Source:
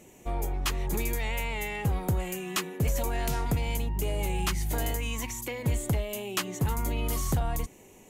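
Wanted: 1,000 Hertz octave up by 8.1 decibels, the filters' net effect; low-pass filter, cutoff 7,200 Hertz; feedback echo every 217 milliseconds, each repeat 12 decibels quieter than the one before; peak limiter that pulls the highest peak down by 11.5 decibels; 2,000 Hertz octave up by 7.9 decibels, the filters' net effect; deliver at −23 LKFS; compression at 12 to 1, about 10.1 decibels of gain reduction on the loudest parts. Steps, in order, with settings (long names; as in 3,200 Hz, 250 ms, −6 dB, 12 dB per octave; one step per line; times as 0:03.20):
low-pass filter 7,200 Hz
parametric band 1,000 Hz +8.5 dB
parametric band 2,000 Hz +7.5 dB
downward compressor 12 to 1, threshold −31 dBFS
brickwall limiter −30 dBFS
repeating echo 217 ms, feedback 25%, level −12 dB
level +15.5 dB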